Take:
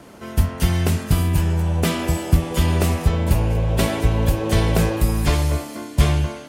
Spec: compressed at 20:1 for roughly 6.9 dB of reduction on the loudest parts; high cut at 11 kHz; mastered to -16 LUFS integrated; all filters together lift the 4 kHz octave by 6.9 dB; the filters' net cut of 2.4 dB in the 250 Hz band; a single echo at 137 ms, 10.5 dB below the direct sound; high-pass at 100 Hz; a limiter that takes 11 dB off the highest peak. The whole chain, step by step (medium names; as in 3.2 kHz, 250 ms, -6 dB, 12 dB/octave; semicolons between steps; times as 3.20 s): high-pass 100 Hz; low-pass 11 kHz; peaking EQ 250 Hz -3.5 dB; peaking EQ 4 kHz +9 dB; compression 20:1, threshold -22 dBFS; peak limiter -21.5 dBFS; delay 137 ms -10.5 dB; trim +14 dB